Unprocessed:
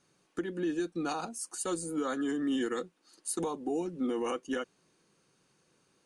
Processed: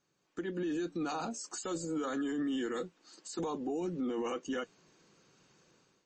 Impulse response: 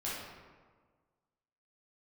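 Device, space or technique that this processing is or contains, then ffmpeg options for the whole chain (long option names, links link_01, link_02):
low-bitrate web radio: -filter_complex "[0:a]asettb=1/sr,asplit=3[link_01][link_02][link_03];[link_01]atrim=end=0.684[link_04];[link_02]atrim=start=0.68:end=2.13,asetpts=PTS-STARTPTS,afade=type=in:duration=0.004:curve=qsin,afade=type=out:start_time=1.446:duration=0.004:curve=qsin,bandreject=frequency=142.9:width_type=h:width=4,bandreject=frequency=285.8:width_type=h:width=4,bandreject=frequency=428.7:width_type=h:width=4,bandreject=frequency=571.6:width_type=h:width=4[link_05];[link_03]atrim=start=2.126[link_06];[link_04][link_05]acrossfade=duration=0.004:curve1=hsin:curve2=qsin[link_07];[link_07][link_06]acrossfade=duration=0.004:curve1=qsin:curve2=hsin,dynaudnorm=framelen=200:gausssize=5:maxgain=13dB,alimiter=limit=-20dB:level=0:latency=1:release=13,volume=-8dB" -ar 24000 -c:a libmp3lame -b:a 32k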